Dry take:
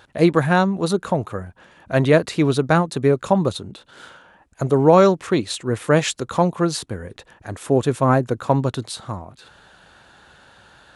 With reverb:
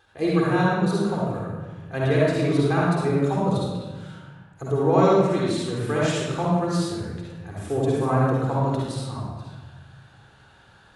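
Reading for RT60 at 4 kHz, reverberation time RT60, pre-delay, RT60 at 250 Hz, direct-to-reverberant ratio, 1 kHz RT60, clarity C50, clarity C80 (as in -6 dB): 0.90 s, 1.3 s, 37 ms, 1.8 s, -5.0 dB, 1.3 s, -4.0 dB, 0.0 dB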